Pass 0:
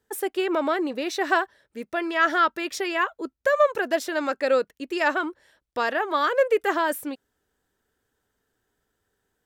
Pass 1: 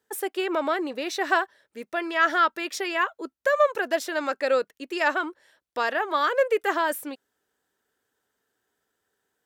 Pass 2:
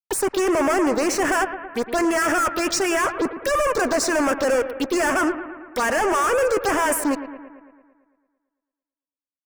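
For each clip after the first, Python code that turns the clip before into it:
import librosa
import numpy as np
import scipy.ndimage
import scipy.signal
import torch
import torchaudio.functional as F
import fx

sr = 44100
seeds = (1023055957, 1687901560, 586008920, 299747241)

y1 = fx.highpass(x, sr, hz=350.0, slope=6)
y2 = fx.fuzz(y1, sr, gain_db=39.0, gate_db=-48.0)
y2 = fx.env_phaser(y2, sr, low_hz=290.0, high_hz=4000.0, full_db=-13.0)
y2 = fx.echo_bbd(y2, sr, ms=112, stages=2048, feedback_pct=62, wet_db=-12.0)
y2 = y2 * 10.0 ** (-4.5 / 20.0)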